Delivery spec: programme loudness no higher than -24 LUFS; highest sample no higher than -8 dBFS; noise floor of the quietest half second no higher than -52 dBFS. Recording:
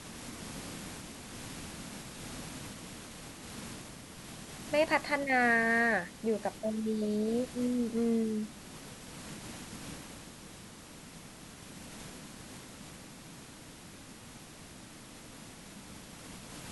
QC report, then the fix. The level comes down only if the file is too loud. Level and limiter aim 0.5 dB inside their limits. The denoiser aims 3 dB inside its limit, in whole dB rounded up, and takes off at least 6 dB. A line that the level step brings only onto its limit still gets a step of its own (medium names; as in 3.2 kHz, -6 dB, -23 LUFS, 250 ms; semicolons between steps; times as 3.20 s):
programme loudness -34.0 LUFS: pass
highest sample -15.0 dBFS: pass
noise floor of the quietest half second -50 dBFS: fail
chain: noise reduction 6 dB, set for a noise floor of -50 dBFS